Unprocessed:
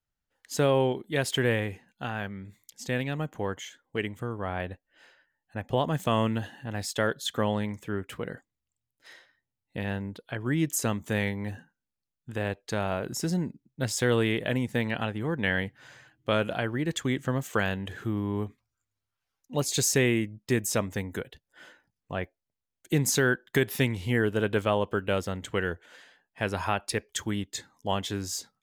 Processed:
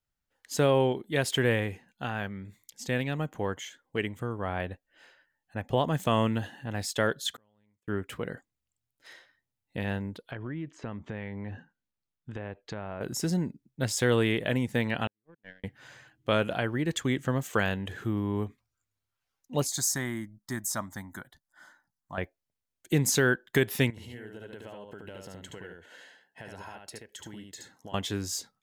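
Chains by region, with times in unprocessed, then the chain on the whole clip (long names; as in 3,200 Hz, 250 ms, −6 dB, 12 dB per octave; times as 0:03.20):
0:07.36–0:07.88: downward compressor 5 to 1, threshold −27 dBFS + gate with flip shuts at −39 dBFS, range −37 dB
0:10.31–0:13.01: treble cut that deepens with the level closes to 2,400 Hz, closed at −27.5 dBFS + downward compressor 5 to 1, threshold −33 dBFS + high-frequency loss of the air 100 metres
0:15.07–0:15.64: low-pass filter 1,900 Hz 6 dB per octave + noise gate −25 dBFS, range −56 dB + parametric band 78 Hz −12.5 dB 0.62 octaves
0:19.67–0:22.18: parametric band 64 Hz −11.5 dB 2.7 octaves + phaser with its sweep stopped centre 1,100 Hz, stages 4
0:23.90–0:27.94: downward compressor 16 to 1, threshold −39 dBFS + notch comb filter 1,200 Hz + single-tap delay 73 ms −3.5 dB
whole clip: no processing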